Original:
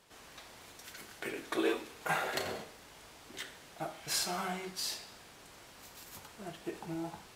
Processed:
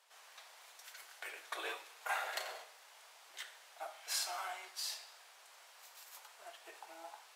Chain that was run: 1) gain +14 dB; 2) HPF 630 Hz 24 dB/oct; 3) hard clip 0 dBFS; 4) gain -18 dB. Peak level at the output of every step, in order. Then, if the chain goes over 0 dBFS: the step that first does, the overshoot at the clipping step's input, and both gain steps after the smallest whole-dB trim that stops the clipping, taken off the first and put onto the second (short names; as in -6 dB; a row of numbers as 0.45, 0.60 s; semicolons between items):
-1.5, -4.0, -4.0, -22.0 dBFS; no overload